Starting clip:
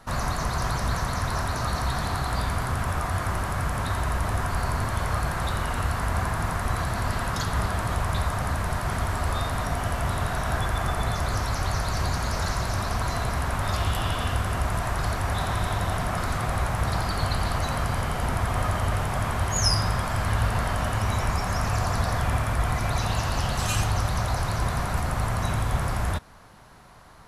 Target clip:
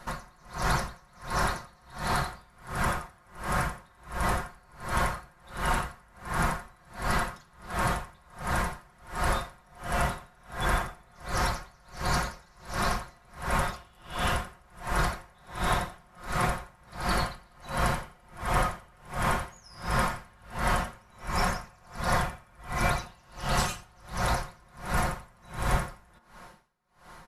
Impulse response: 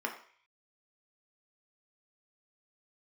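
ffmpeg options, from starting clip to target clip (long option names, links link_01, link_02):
-filter_complex "[0:a]aecho=1:1:5.6:0.65,asplit=2[link_01][link_02];[1:a]atrim=start_sample=2205[link_03];[link_02][link_03]afir=irnorm=-1:irlink=0,volume=-11dB[link_04];[link_01][link_04]amix=inputs=2:normalize=0,aeval=exprs='val(0)*pow(10,-34*(0.5-0.5*cos(2*PI*1.4*n/s))/20)':channel_layout=same"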